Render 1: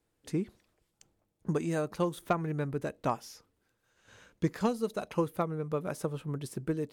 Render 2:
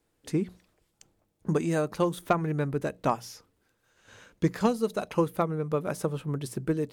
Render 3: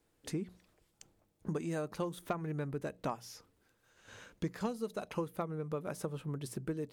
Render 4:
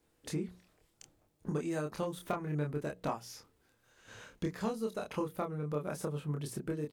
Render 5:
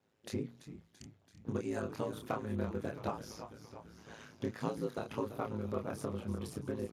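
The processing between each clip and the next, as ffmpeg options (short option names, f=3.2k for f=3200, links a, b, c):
-af "bandreject=f=60:t=h:w=6,bandreject=f=120:t=h:w=6,bandreject=f=180:t=h:w=6,volume=4.5dB"
-af "acompressor=threshold=-40dB:ratio=2,volume=-1dB"
-filter_complex "[0:a]asplit=2[a][b];[b]adelay=27,volume=-3dB[c];[a][c]amix=inputs=2:normalize=0"
-filter_complex "[0:a]asplit=9[a][b][c][d][e][f][g][h][i];[b]adelay=335,afreqshift=-68,volume=-11dB[j];[c]adelay=670,afreqshift=-136,volume=-14.9dB[k];[d]adelay=1005,afreqshift=-204,volume=-18.8dB[l];[e]adelay=1340,afreqshift=-272,volume=-22.6dB[m];[f]adelay=1675,afreqshift=-340,volume=-26.5dB[n];[g]adelay=2010,afreqshift=-408,volume=-30.4dB[o];[h]adelay=2345,afreqshift=-476,volume=-34.3dB[p];[i]adelay=2680,afreqshift=-544,volume=-38.1dB[q];[a][j][k][l][m][n][o][p][q]amix=inputs=9:normalize=0,aeval=exprs='val(0)*sin(2*PI*54*n/s)':c=same,volume=1dB" -ar 32000 -c:a libspeex -b:a 36k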